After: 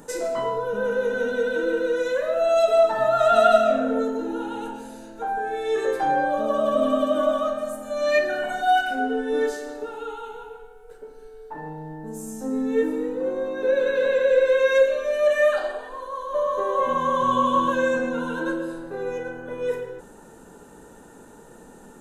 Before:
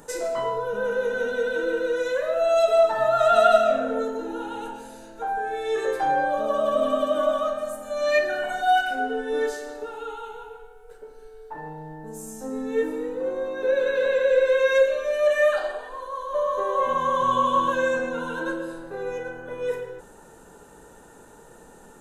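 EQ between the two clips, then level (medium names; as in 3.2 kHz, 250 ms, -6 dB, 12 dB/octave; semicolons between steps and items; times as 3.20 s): peaking EQ 240 Hz +6.5 dB 1.1 oct; 0.0 dB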